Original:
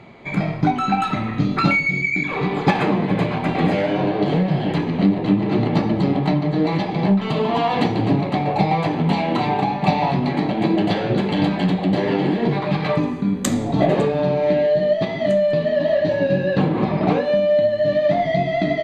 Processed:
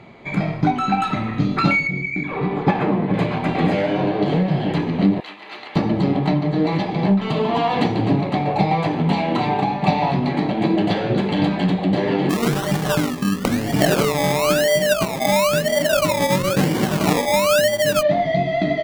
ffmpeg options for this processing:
ffmpeg -i in.wav -filter_complex "[0:a]asettb=1/sr,asplit=3[link_01][link_02][link_03];[link_01]atrim=end=1.874[link_04];[link_02]atrim=start=1.87:end=3.14,asetpts=PTS-STARTPTS,afade=type=in:duration=0.004:curve=qsin,afade=type=out:start_time=1.266:duration=0.004:curve=qsin,lowpass=frequency=1500:poles=1[link_05];[link_03]atrim=start=3.136[link_06];[link_04][link_05]acrossfade=duration=0.004:curve1=hsin:curve2=qsin[link_07];[link_07][link_06]acrossfade=duration=0.004:curve1=qsin:curve2=hsin,asettb=1/sr,asplit=3[link_08][link_09][link_10];[link_08]atrim=end=5.204[link_11];[link_09]atrim=start=5.2:end=5.76,asetpts=PTS-STARTPTS,afade=type=in:duration=0.004:curve=qsin,afade=type=out:start_time=0.556:duration=0.004:curve=qsin,highpass=1400[link_12];[link_10]atrim=start=5.756[link_13];[link_11][link_12]acrossfade=duration=0.004:curve1=hsin:curve2=qsin[link_14];[link_14][link_13]acrossfade=duration=0.004:curve1=qsin:curve2=hsin,asplit=3[link_15][link_16][link_17];[link_15]afade=type=out:start_time=12.29:duration=0.02[link_18];[link_16]acrusher=samples=24:mix=1:aa=0.000001:lfo=1:lforange=14.4:lforate=1,afade=type=in:start_time=12.29:duration=0.02,afade=type=out:start_time=18.01:duration=0.02[link_19];[link_17]afade=type=in:start_time=18.01:duration=0.02[link_20];[link_18][link_19][link_20]amix=inputs=3:normalize=0" out.wav

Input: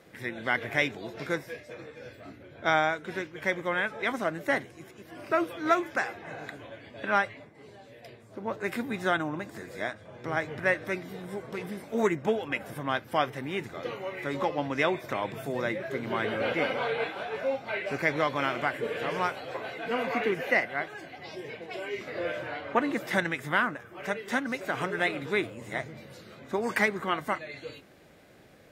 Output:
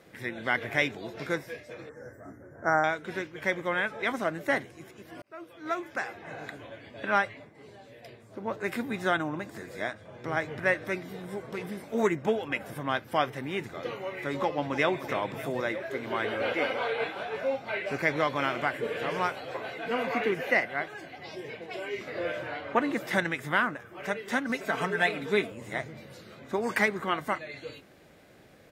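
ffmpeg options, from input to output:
ffmpeg -i in.wav -filter_complex "[0:a]asettb=1/sr,asplit=3[link_01][link_02][link_03];[link_01]atrim=end=1.894[link_04];[link_02]atrim=start=1.89:end=2.84,asetpts=PTS-STARTPTS,afade=type=in:duration=0.004:curve=qsin,afade=type=out:start_time=0.946:duration=0.004:curve=qsin,asuperstop=centerf=3300:order=12:qfactor=0.9[link_05];[link_03]atrim=start=2.836[link_06];[link_04][link_05]acrossfade=duration=0.004:curve1=hsin:curve2=qsin[link_07];[link_07][link_06]acrossfade=duration=0.004:curve1=qsin:curve2=hsin,asplit=2[link_08][link_09];[link_09]afade=type=in:start_time=14.32:duration=0.01,afade=type=out:start_time=14.9:duration=0.01,aecho=0:1:300|600|900|1200|1500|1800|2100:0.251189|0.150713|0.0904279|0.0542567|0.032554|0.0195324|0.0117195[link_10];[link_08][link_10]amix=inputs=2:normalize=0,asettb=1/sr,asplit=3[link_11][link_12][link_13];[link_11]atrim=end=15.614[link_14];[link_12]atrim=start=15.61:end=17.01,asetpts=PTS-STARTPTS,afade=type=in:duration=0.004:curve=qsin,afade=type=out:start_time=1.396:duration=0.004:curve=qsin,equalizer=frequency=160:width_type=o:width=0.77:gain=-11[link_15];[link_13]atrim=start=17.006[link_16];[link_14][link_15]acrossfade=duration=0.004:curve1=hsin:curve2=qsin[link_17];[link_17][link_16]acrossfade=duration=0.004:curve1=qsin:curve2=hsin,asettb=1/sr,asplit=3[link_18][link_19][link_20];[link_18]atrim=end=24.494[link_21];[link_19]atrim=start=24.49:end=25.52,asetpts=PTS-STARTPTS,afade=type=in:duration=0.004:curve=qsin,afade=type=out:start_time=1.026:duration=0.004:curve=qsin,aecho=1:1:4.5:0.65,atrim=end_sample=45423[link_22];[link_20]atrim=start=25.516[link_23];[link_21][link_22]acrossfade=duration=0.004:curve1=hsin:curve2=qsin[link_24];[link_24][link_23]acrossfade=duration=0.004:curve1=qsin:curve2=hsin,asplit=2[link_25][link_26];[link_25]atrim=end=5.22,asetpts=PTS-STARTPTS,afade=type=out:start_time=5.216:duration=0.004:curve=hsin[link_27];[link_26]atrim=start=5.22,asetpts=PTS-STARTPTS,afade=type=in:duration=1.19[link_28];[link_27][link_28]concat=n=2:v=0:a=1" out.wav

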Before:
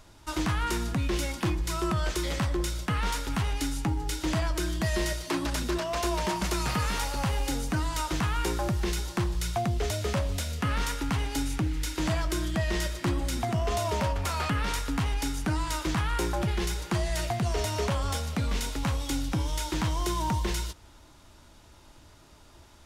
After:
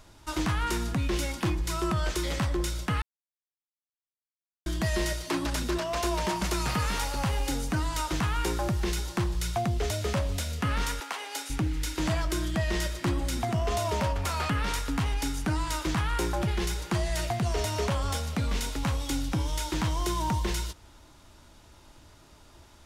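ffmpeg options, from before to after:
ffmpeg -i in.wav -filter_complex "[0:a]asettb=1/sr,asplit=3[link_01][link_02][link_03];[link_01]atrim=end=11.004[link_04];[link_02]atrim=start=11:end=11.5,asetpts=PTS-STARTPTS,afade=type=in:duration=0.004:curve=qsin,afade=type=out:start_time=0.496:duration=0.004:curve=qsin,highpass=frequency=470:width=0.5412,highpass=frequency=470:width=1.3066[link_05];[link_03]atrim=start=11.496[link_06];[link_04][link_05]acrossfade=duration=0.004:curve1=hsin:curve2=qsin[link_07];[link_07][link_06]acrossfade=duration=0.004:curve1=qsin:curve2=hsin,asplit=3[link_08][link_09][link_10];[link_08]atrim=end=3.02,asetpts=PTS-STARTPTS,afade=type=out:start_time=3.016:duration=0.004:curve=hsin[link_11];[link_09]atrim=start=3.02:end=4.66,asetpts=PTS-STARTPTS,volume=0[link_12];[link_10]atrim=start=4.66,asetpts=PTS-STARTPTS,afade=type=in:duration=0.004:curve=hsin[link_13];[link_11][link_12][link_13]concat=n=3:v=0:a=1" out.wav

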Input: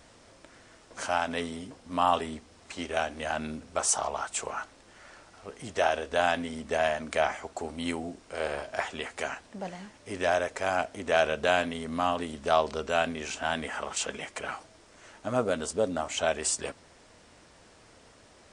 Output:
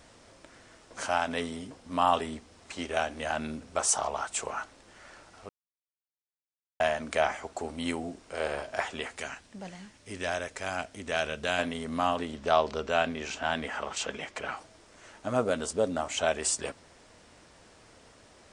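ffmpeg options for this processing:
ffmpeg -i in.wav -filter_complex "[0:a]asettb=1/sr,asplit=3[link_01][link_02][link_03];[link_01]atrim=end=9.164[link_04];[link_02]atrim=start=9.16:end=11.59,asetpts=PTS-STARTPTS,afade=type=in:duration=0.004:curve=qsin,afade=type=out:start_time=2.426:duration=0.004:curve=qsin,equalizer=frequency=660:width=0.51:gain=-7.5[link_05];[link_03]atrim=start=11.586[link_06];[link_04][link_05]acrossfade=duration=0.004:curve1=hsin:curve2=qsin[link_07];[link_07][link_06]acrossfade=duration=0.004:curve1=qsin:curve2=hsin,asettb=1/sr,asplit=3[link_08][link_09][link_10];[link_08]atrim=end=12.214[link_11];[link_09]atrim=start=12.21:end=14.57,asetpts=PTS-STARTPTS,afade=type=in:duration=0.004:curve=qsin,afade=type=out:start_time=2.356:duration=0.004:curve=qsin,lowpass=6400[link_12];[link_10]atrim=start=14.566[link_13];[link_11][link_12]acrossfade=duration=0.004:curve1=hsin:curve2=qsin[link_14];[link_14][link_13]acrossfade=duration=0.004:curve1=qsin:curve2=hsin,asplit=3[link_15][link_16][link_17];[link_15]atrim=end=5.49,asetpts=PTS-STARTPTS,afade=type=out:start_time=5.486:duration=0.004:curve=hsin[link_18];[link_16]atrim=start=5.49:end=6.8,asetpts=PTS-STARTPTS,volume=0[link_19];[link_17]atrim=start=6.8,asetpts=PTS-STARTPTS,afade=type=in:duration=0.004:curve=hsin[link_20];[link_18][link_19][link_20]concat=n=3:v=0:a=1" out.wav

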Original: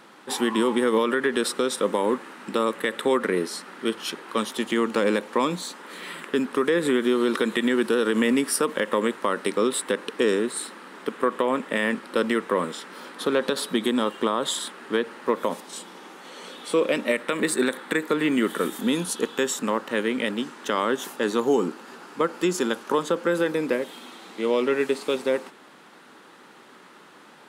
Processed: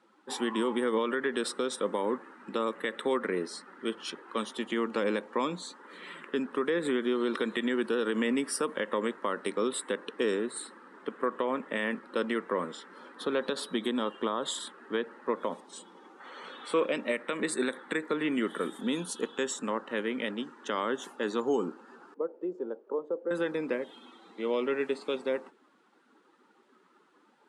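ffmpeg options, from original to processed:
ffmpeg -i in.wav -filter_complex "[0:a]asettb=1/sr,asplit=3[link_01][link_02][link_03];[link_01]atrim=end=16.204[link_04];[link_02]atrim=start=16.2:end=16.85,asetpts=PTS-STARTPTS,afade=type=in:duration=0.004:curve=qsin,afade=type=out:start_time=0.646:duration=0.004:curve=qsin,equalizer=frequency=1400:width=0.8:gain=7[link_05];[link_03]atrim=start=16.846[link_06];[link_04][link_05]acrossfade=duration=0.004:curve1=hsin:curve2=qsin[link_07];[link_07][link_06]acrossfade=duration=0.004:curve1=qsin:curve2=hsin,asettb=1/sr,asplit=3[link_08][link_09][link_10];[link_08]atrim=end=22.144[link_11];[link_09]atrim=start=22.14:end=23.31,asetpts=PTS-STARTPTS,afade=type=in:duration=0.004:curve=qsin,afade=type=out:start_time=1.166:duration=0.004:curve=qsin,bandpass=frequency=470:width_type=q:width=2[link_12];[link_10]atrim=start=23.306[link_13];[link_11][link_12]acrossfade=duration=0.004:curve1=hsin:curve2=qsin[link_14];[link_14][link_13]acrossfade=duration=0.004:curve1=qsin:curve2=hsin,highpass=140,afftdn=noise_reduction=13:noise_floor=-42,lowpass=frequency=10000:width=0.5412,lowpass=frequency=10000:width=1.3066,volume=-7dB" out.wav

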